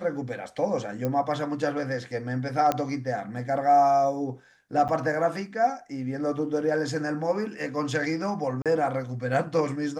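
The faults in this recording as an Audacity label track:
1.050000	1.050000	pop -16 dBFS
2.720000	2.720000	pop -11 dBFS
4.880000	4.890000	gap 7.8 ms
8.620000	8.660000	gap 37 ms

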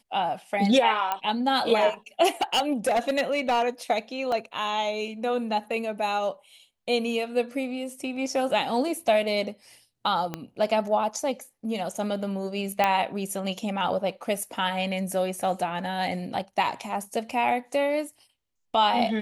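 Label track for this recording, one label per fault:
1.120000	1.120000	pop -13 dBFS
2.420000	3.640000	clipped -19 dBFS
4.320000	4.320000	gap 2.7 ms
10.340000	10.340000	pop -16 dBFS
12.840000	12.840000	pop -9 dBFS

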